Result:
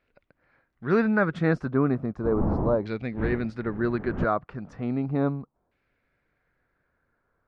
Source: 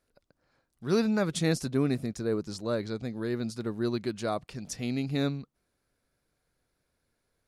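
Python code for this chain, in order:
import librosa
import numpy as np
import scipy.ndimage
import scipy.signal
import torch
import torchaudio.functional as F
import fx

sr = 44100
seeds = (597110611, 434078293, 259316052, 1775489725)

y = fx.dmg_wind(x, sr, seeds[0], corner_hz=240.0, level_db=-33.0, at=(2.23, 4.23), fade=0.02)
y = fx.filter_lfo_lowpass(y, sr, shape='saw_down', hz=0.35, low_hz=860.0, high_hz=2500.0, q=2.6)
y = y * librosa.db_to_amplitude(3.0)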